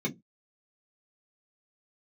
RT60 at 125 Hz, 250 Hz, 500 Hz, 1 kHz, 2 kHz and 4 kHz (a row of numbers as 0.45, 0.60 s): 0.30, 0.25, 0.20, 0.15, 0.10, 0.10 s